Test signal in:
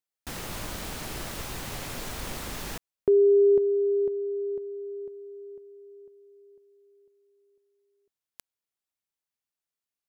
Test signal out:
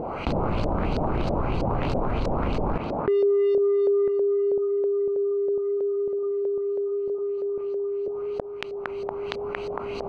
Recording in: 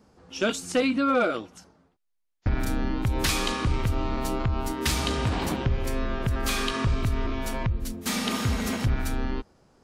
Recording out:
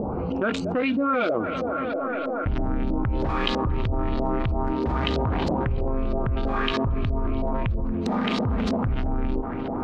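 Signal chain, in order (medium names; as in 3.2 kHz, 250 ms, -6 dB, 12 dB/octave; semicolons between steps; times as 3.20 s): local Wiener filter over 25 samples; peak limiter -19.5 dBFS; on a send: tape echo 230 ms, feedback 80%, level -19.5 dB, low-pass 3.8 kHz; on the sum: upward compressor, threshold -30 dBFS; LFO low-pass saw up 3.1 Hz 540–4900 Hz; level flattener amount 70%; trim -1 dB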